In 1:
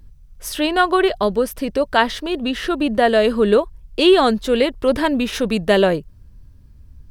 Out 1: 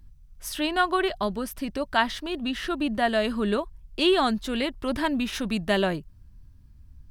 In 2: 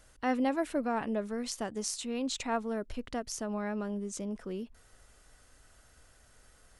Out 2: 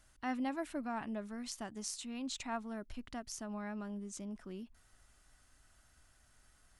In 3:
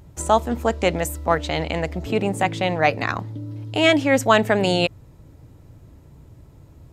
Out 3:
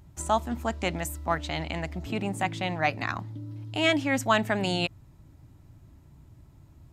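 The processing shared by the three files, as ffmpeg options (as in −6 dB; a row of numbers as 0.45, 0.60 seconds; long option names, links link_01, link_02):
-af "equalizer=frequency=480:width=3.3:gain=-12,volume=-6dB"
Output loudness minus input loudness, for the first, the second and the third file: −8.5, −7.5, −7.5 LU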